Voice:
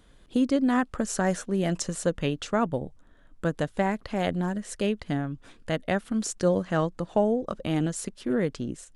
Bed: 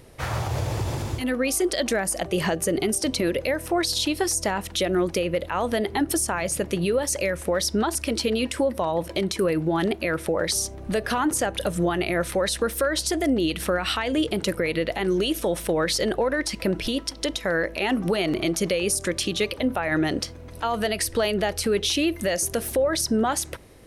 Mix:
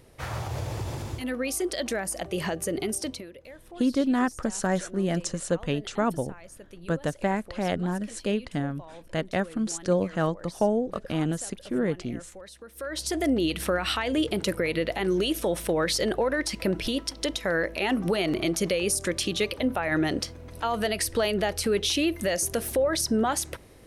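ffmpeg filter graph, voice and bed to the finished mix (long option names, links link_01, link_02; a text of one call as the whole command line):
ffmpeg -i stem1.wav -i stem2.wav -filter_complex "[0:a]adelay=3450,volume=-0.5dB[link_01];[1:a]volume=14dB,afade=type=out:start_time=3:duration=0.26:silence=0.158489,afade=type=in:start_time=12.72:duration=0.52:silence=0.105925[link_02];[link_01][link_02]amix=inputs=2:normalize=0" out.wav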